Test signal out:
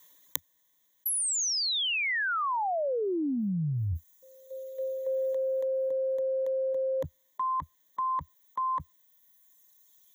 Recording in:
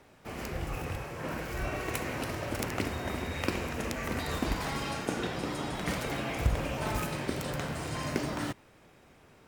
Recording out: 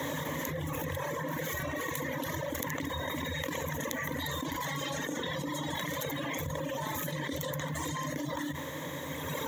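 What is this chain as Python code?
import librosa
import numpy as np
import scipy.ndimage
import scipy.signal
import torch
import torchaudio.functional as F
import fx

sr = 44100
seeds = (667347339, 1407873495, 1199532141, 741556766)

y = fx.ripple_eq(x, sr, per_octave=1.1, db=15)
y = fx.dereverb_blind(y, sr, rt60_s=2.0)
y = scipy.signal.sosfilt(scipy.signal.butter(4, 95.0, 'highpass', fs=sr, output='sos'), y)
y = fx.high_shelf(y, sr, hz=12000.0, db=9.5)
y = fx.env_flatten(y, sr, amount_pct=100)
y = y * 10.0 ** (-10.5 / 20.0)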